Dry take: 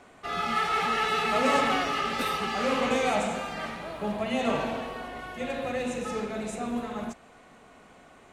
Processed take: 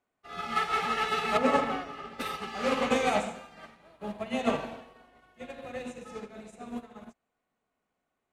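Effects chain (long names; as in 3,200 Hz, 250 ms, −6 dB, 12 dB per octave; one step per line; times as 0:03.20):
0:01.37–0:02.20: high-shelf EQ 2,000 Hz −10.5 dB
expander for the loud parts 2.5 to 1, over −44 dBFS
level +2.5 dB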